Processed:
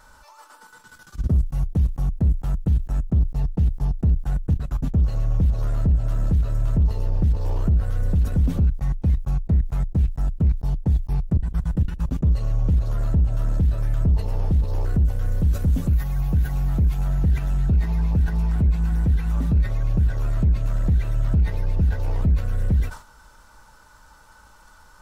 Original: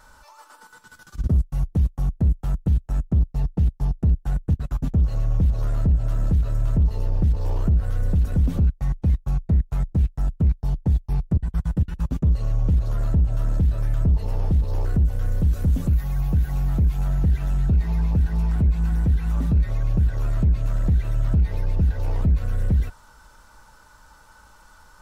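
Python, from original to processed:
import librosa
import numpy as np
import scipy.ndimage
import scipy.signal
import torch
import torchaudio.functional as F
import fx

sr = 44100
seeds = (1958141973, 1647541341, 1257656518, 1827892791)

y = fx.sustainer(x, sr, db_per_s=140.0)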